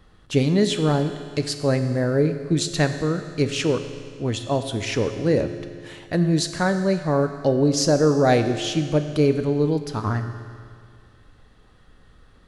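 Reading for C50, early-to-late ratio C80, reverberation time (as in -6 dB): 9.0 dB, 10.0 dB, 2.1 s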